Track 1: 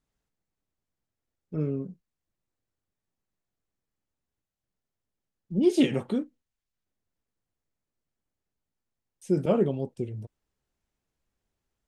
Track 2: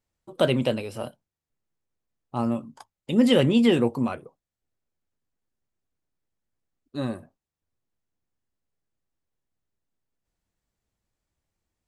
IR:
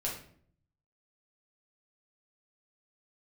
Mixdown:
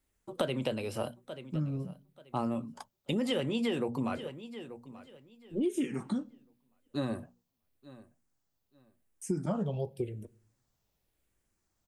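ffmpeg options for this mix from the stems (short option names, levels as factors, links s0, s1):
-filter_complex "[0:a]highshelf=f=7500:g=10.5,asplit=2[s0][s1];[s1]afreqshift=-0.89[s2];[s0][s2]amix=inputs=2:normalize=1,volume=1.19,asplit=2[s3][s4];[s4]volume=0.0708[s5];[1:a]bandreject=f=60:t=h:w=6,bandreject=f=120:t=h:w=6,bandreject=f=180:t=h:w=6,bandreject=f=240:t=h:w=6,acrossover=split=370|3000[s6][s7][s8];[s6]acompressor=threshold=0.0708:ratio=6[s9];[s9][s7][s8]amix=inputs=3:normalize=0,volume=1,asplit=2[s10][s11];[s11]volume=0.0794[s12];[2:a]atrim=start_sample=2205[s13];[s5][s13]afir=irnorm=-1:irlink=0[s14];[s12]aecho=0:1:884|1768|2652|3536:1|0.22|0.0484|0.0106[s15];[s3][s10][s14][s15]amix=inputs=4:normalize=0,acompressor=threshold=0.0398:ratio=8"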